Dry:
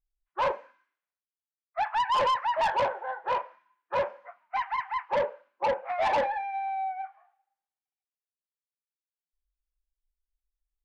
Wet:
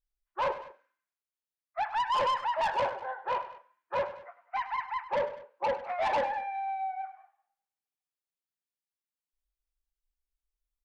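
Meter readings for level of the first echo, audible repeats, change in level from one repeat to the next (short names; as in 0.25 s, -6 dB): -14.0 dB, 2, -5.0 dB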